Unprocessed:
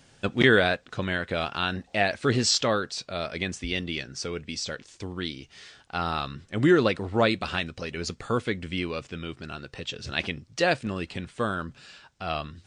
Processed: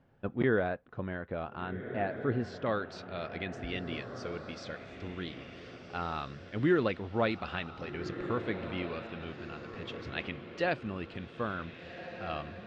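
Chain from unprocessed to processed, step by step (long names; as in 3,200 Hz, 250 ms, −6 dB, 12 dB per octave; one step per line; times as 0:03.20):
low-pass filter 1,200 Hz 12 dB per octave, from 0:02.66 2,900 Hz
feedback delay with all-pass diffusion 1,573 ms, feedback 40%, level −9.5 dB
level −7 dB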